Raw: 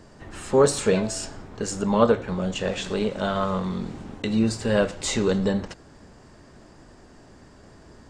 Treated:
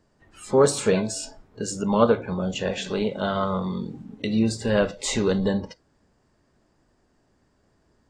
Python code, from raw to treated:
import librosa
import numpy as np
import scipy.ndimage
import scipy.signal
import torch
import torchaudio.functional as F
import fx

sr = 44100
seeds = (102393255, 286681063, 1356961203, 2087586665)

y = fx.noise_reduce_blind(x, sr, reduce_db=16)
y = fx.dynamic_eq(y, sr, hz=830.0, q=1.2, threshold_db=-45.0, ratio=4.0, max_db=-6, at=(1.01, 1.89))